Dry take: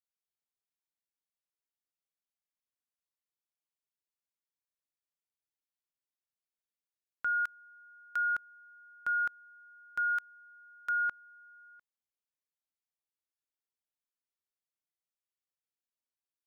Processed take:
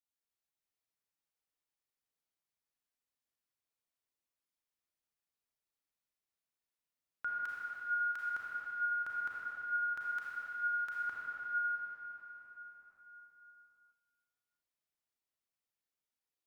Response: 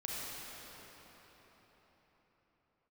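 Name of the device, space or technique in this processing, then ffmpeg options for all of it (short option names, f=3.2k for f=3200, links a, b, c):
cathedral: -filter_complex "[1:a]atrim=start_sample=2205[a];[0:a][a]afir=irnorm=-1:irlink=0,volume=-1dB"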